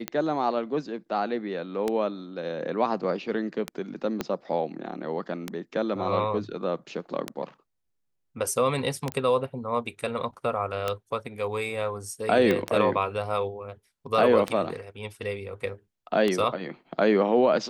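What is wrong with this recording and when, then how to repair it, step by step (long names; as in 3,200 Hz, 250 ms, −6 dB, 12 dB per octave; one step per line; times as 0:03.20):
scratch tick 33 1/3 rpm −12 dBFS
0:04.21: click −13 dBFS
0:09.12: click −17 dBFS
0:12.51: click −12 dBFS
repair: click removal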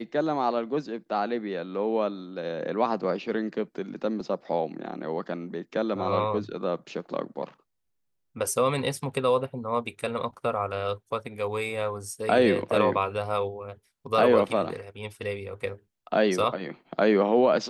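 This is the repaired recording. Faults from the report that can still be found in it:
0:04.21: click
0:12.51: click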